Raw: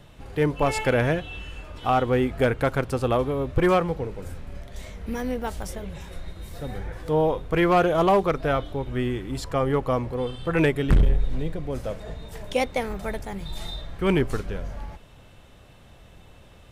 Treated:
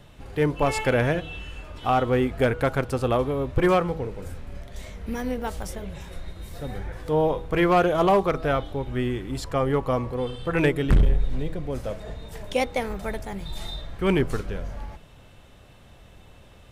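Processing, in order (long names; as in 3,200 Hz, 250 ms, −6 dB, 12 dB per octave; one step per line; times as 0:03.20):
hum removal 161.7 Hz, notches 9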